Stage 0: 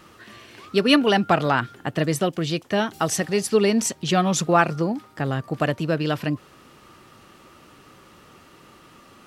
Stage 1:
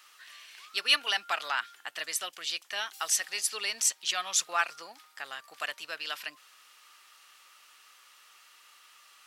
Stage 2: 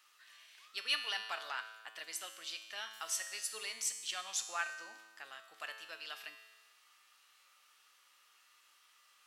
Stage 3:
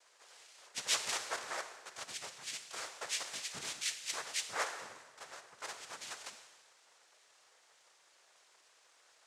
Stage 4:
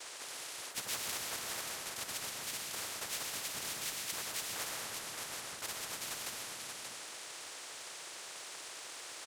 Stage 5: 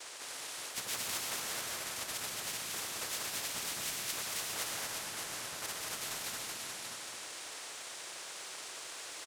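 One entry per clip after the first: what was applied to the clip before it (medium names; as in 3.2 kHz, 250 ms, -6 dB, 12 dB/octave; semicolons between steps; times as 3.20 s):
high-pass 830 Hz 12 dB/octave; tilt shelf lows -9.5 dB, about 1.1 kHz; trim -9 dB
feedback comb 110 Hz, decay 1.3 s, harmonics all, mix 80%; trim +2 dB
noise-vocoded speech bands 3; trim +1 dB
delay 581 ms -14.5 dB; reverberation, pre-delay 80 ms, DRR 5.5 dB; spectrum-flattening compressor 4:1; trim -6 dB
delay 226 ms -3 dB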